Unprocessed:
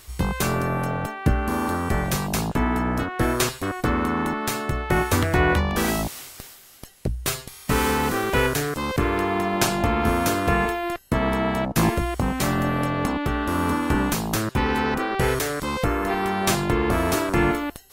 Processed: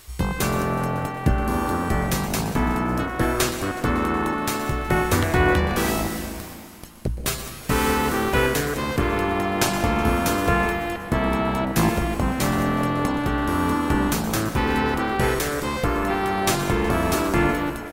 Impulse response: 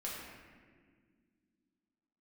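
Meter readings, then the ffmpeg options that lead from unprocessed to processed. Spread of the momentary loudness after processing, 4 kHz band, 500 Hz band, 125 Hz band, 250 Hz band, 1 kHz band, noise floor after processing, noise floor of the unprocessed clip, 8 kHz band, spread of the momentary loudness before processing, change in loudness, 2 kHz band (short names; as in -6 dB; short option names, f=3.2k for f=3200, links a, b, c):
5 LU, +0.5 dB, +0.5 dB, +0.5 dB, +1.0 dB, +1.0 dB, -35 dBFS, -46 dBFS, +0.5 dB, 5 LU, +0.5 dB, +0.5 dB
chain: -filter_complex "[0:a]asplit=7[a][b][c][d][e][f][g];[b]adelay=185,afreqshift=140,volume=-19dB[h];[c]adelay=370,afreqshift=280,volume=-22.7dB[i];[d]adelay=555,afreqshift=420,volume=-26.5dB[j];[e]adelay=740,afreqshift=560,volume=-30.2dB[k];[f]adelay=925,afreqshift=700,volume=-34dB[l];[g]adelay=1110,afreqshift=840,volume=-37.7dB[m];[a][h][i][j][k][l][m]amix=inputs=7:normalize=0,asplit=2[n][o];[1:a]atrim=start_sample=2205,adelay=120[p];[o][p]afir=irnorm=-1:irlink=0,volume=-9.5dB[q];[n][q]amix=inputs=2:normalize=0"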